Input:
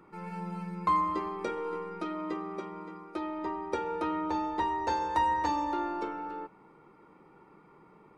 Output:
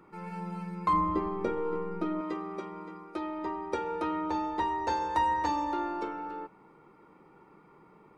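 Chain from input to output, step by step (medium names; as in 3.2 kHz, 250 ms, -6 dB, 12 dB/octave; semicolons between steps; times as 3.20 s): 0.93–2.21 s: tilt EQ -3 dB/octave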